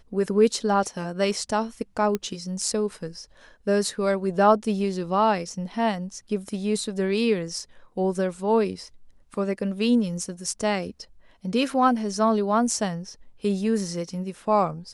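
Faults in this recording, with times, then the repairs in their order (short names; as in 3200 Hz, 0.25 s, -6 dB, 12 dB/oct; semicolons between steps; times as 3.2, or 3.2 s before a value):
2.15 pop -13 dBFS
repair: de-click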